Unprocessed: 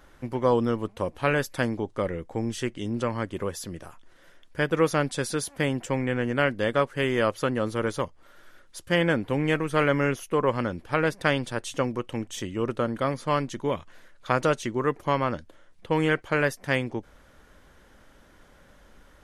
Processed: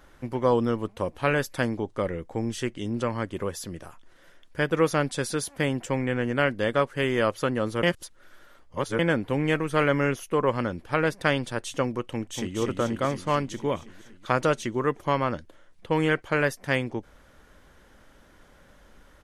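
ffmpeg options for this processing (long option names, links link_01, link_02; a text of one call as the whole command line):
ffmpeg -i in.wav -filter_complex "[0:a]asplit=2[link_01][link_02];[link_02]afade=type=in:start_time=12.11:duration=0.01,afade=type=out:start_time=12.57:duration=0.01,aecho=0:1:240|480|720|960|1200|1440|1680|1920|2160|2400|2640|2880:0.668344|0.467841|0.327489|0.229242|0.160469|0.112329|0.07863|0.055041|0.0385287|0.0269701|0.0188791|0.0132153[link_03];[link_01][link_03]amix=inputs=2:normalize=0,asplit=3[link_04][link_05][link_06];[link_04]atrim=end=7.832[link_07];[link_05]atrim=start=7.828:end=8.992,asetpts=PTS-STARTPTS,areverse[link_08];[link_06]atrim=start=8.988[link_09];[link_07][link_08]acrossfade=duration=0.004:curve1=hsin:curve2=hsin[link_10];[link_10][link_09]acrossfade=duration=0.004:curve1=hsin:curve2=hsin" out.wav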